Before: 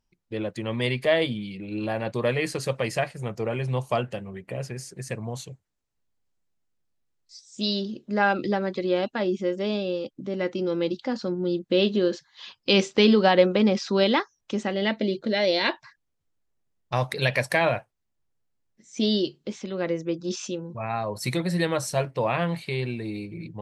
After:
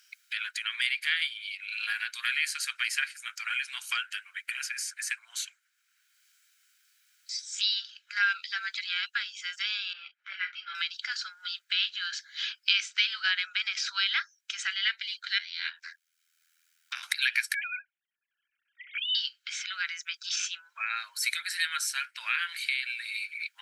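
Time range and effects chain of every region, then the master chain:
9.93–10.75 s: Butterworth band-pass 1.1 kHz, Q 0.59 + doubling 33 ms -11 dB + three-phase chorus
15.38–17.03 s: ring modulator 41 Hz + compression 2:1, threshold -41 dBFS
17.54–19.15 s: formants replaced by sine waves + compression 3:1, threshold -29 dBFS + comb of notches 260 Hz
whole clip: Chebyshev high-pass 1.4 kHz, order 5; comb 1.3 ms, depth 33%; three bands compressed up and down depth 70%; trim +4 dB

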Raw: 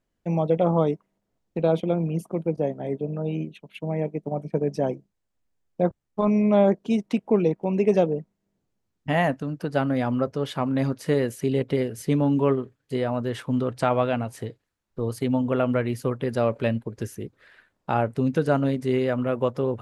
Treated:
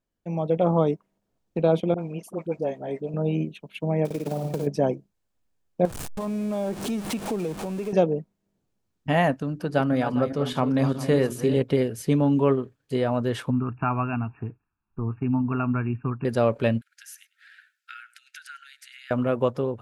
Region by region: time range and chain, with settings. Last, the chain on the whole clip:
1.94–3.14 s: bass shelf 390 Hz -10.5 dB + phase dispersion highs, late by 45 ms, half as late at 650 Hz
4.05–4.67 s: block-companded coder 5-bit + flutter echo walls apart 9.3 m, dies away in 0.56 s + compression 5:1, threshold -26 dBFS
5.85–7.93 s: jump at every zero crossing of -28.5 dBFS + peaking EQ 8.9 kHz +6 dB 0.87 oct + compression 3:1, threshold -31 dBFS
9.52–11.57 s: backward echo that repeats 202 ms, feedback 48%, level -10.5 dB + hum notches 60/120/180/240/300/360/420 Hz
13.50–16.25 s: brick-wall FIR low-pass 2.8 kHz + static phaser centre 2 kHz, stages 6 + dynamic bell 660 Hz, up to -3 dB, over -38 dBFS, Q 0.85
16.81–19.11 s: compression 4:1, threshold -28 dBFS + brick-wall FIR high-pass 1.3 kHz + delay 101 ms -20 dB
whole clip: band-stop 2 kHz, Q 17; level rider gain up to 9 dB; trim -6 dB

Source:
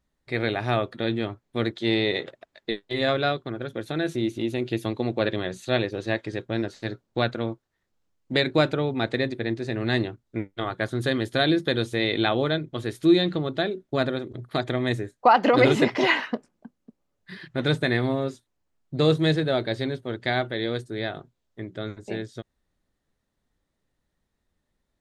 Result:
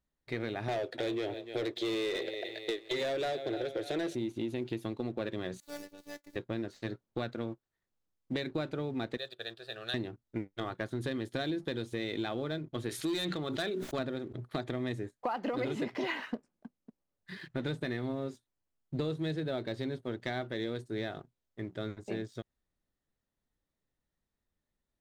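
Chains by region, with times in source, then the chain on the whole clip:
0.68–4.15 s: static phaser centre 480 Hz, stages 4 + feedback delay 296 ms, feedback 46%, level -20 dB + overdrive pedal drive 22 dB, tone 2.8 kHz, clips at -13 dBFS
5.60–6.36 s: median filter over 15 samples + pre-emphasis filter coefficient 0.8 + robot voice 291 Hz
9.17–9.94 s: high-pass 970 Hz 6 dB/octave + dynamic bell 3.5 kHz, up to +6 dB, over -48 dBFS, Q 2.8 + static phaser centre 1.4 kHz, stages 8
12.89–13.99 s: tilt shelf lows -6.5 dB, about 660 Hz + hard clipper -17.5 dBFS + decay stretcher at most 30 dB/s
whole clip: dynamic bell 250 Hz, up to +4 dB, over -33 dBFS, Q 0.73; compression 6:1, threshold -27 dBFS; waveshaping leveller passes 1; trim -8 dB

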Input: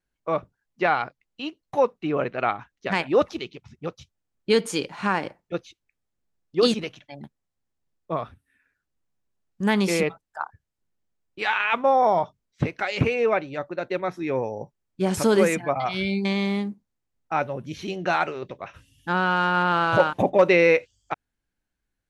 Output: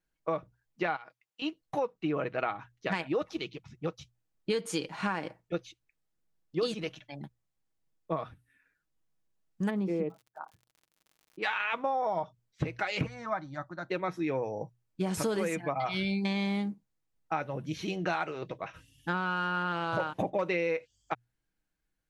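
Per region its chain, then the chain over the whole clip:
0.96–1.42 s: high-pass 850 Hz 6 dB/octave + band-stop 4.1 kHz, Q 15 + compression 8:1, threshold -36 dBFS
9.69–11.42 s: band-pass filter 280 Hz, Q 0.95 + crackle 55 per s -45 dBFS
13.06–13.89 s: Chebyshev low-pass 6.6 kHz + static phaser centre 1.1 kHz, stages 4
whole clip: hum notches 60/120 Hz; comb 6.3 ms, depth 37%; compression 6:1, threshold -25 dBFS; trim -2.5 dB

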